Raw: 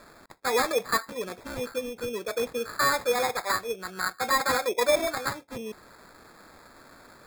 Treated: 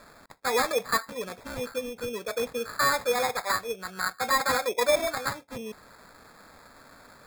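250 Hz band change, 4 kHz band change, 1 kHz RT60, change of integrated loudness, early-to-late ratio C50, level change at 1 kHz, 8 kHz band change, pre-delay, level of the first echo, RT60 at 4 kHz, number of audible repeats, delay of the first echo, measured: -1.5 dB, 0.0 dB, no reverb, -0.5 dB, no reverb, 0.0 dB, 0.0 dB, no reverb, no echo, no reverb, no echo, no echo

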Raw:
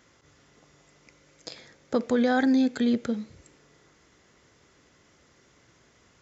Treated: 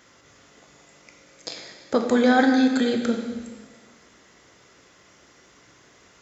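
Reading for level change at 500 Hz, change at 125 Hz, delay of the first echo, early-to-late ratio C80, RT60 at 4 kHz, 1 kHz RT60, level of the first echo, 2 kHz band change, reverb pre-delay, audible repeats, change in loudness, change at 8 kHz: +5.5 dB, no reading, no echo, 7.0 dB, 1.3 s, 1.4 s, no echo, +7.0 dB, 11 ms, no echo, +4.0 dB, no reading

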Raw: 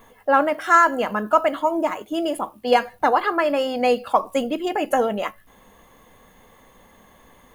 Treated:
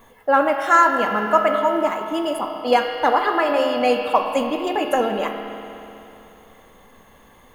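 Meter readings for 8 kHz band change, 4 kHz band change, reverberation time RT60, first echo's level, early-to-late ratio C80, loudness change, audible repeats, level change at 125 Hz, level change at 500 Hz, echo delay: 0.0 dB, +2.5 dB, 3.0 s, no echo, 9.0 dB, +1.5 dB, no echo, no reading, +1.5 dB, no echo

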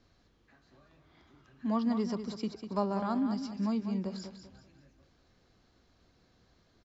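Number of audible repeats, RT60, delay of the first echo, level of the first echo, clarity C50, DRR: 3, no reverb, 196 ms, -9.0 dB, no reverb, no reverb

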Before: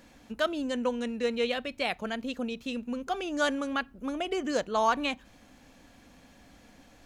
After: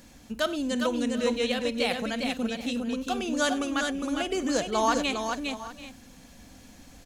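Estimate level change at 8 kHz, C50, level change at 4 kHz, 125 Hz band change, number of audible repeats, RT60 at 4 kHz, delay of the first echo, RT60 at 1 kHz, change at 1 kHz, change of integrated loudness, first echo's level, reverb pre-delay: +9.5 dB, no reverb, +4.5 dB, +6.0 dB, 5, no reverb, 50 ms, no reverb, +1.5 dB, +3.0 dB, -17.0 dB, no reverb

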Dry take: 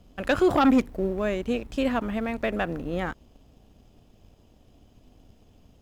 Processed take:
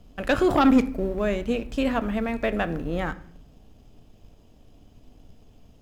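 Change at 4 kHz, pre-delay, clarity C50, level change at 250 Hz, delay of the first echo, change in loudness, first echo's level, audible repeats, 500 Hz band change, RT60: +1.0 dB, 4 ms, 17.5 dB, +1.5 dB, no echo, +1.5 dB, no echo, no echo, +1.0 dB, 0.60 s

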